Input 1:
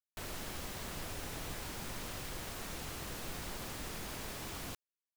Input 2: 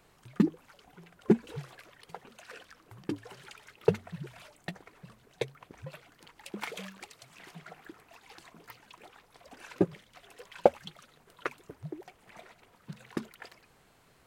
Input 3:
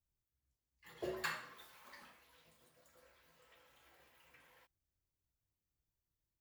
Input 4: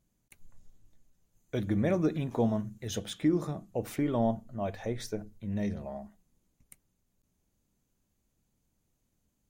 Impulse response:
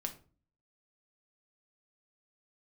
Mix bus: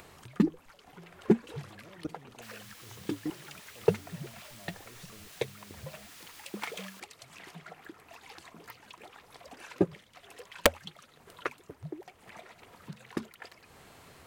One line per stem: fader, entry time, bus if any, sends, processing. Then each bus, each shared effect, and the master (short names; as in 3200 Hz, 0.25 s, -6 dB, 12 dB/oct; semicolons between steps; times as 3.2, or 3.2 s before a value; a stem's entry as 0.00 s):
-7.0 dB, 2.25 s, no send, HPF 1500 Hz 12 dB/oct
+0.5 dB, 0.00 s, no send, low shelf 78 Hz -8.5 dB; wrapped overs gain 9 dB
-3.0 dB, 0.00 s, no send, Schmitt trigger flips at -51.5 dBFS; HPF 680 Hz; treble ducked by the level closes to 3000 Hz
-7.5 dB, 0.00 s, no send, level quantiser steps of 24 dB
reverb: off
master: bell 82 Hz +9.5 dB 0.37 oct; upward compressor, threshold -44 dBFS; notch 1500 Hz, Q 29